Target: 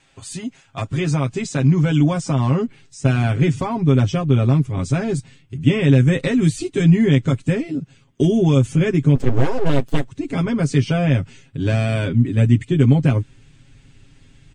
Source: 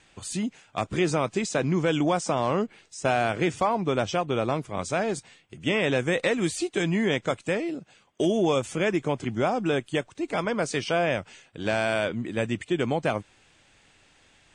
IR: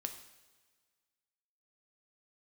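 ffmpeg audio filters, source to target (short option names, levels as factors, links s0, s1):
-filter_complex "[0:a]asubboost=boost=9.5:cutoff=220,asettb=1/sr,asplit=3[s0][s1][s2];[s0]atrim=end=9.154[s3];[s1]atrim=start=9.15:end=10.09,asetpts=PTS-STARTPTS,afade=t=in:d=0.004:c=qsin,afade=t=out:st=0.936:d=0.004:c=qsin,aeval=exprs='abs(val(0))':c=same[s4];[s2]atrim=start=10.086[s5];[s3][s4]acrossfade=d=0.004:c1=hsin:c2=qsin[s6];[s6][s5]acrossfade=d=0.004:c1=qsin:c2=hsin,aecho=1:1:7.4:0.85,volume=0.891"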